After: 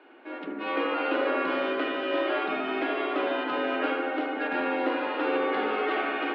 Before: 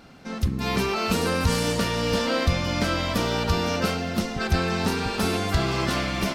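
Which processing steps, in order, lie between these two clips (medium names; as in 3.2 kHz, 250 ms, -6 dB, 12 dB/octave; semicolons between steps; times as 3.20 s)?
bucket-brigade echo 75 ms, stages 1024, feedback 79%, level -4 dB; mistuned SSB +89 Hz 200–3000 Hz; trim -3.5 dB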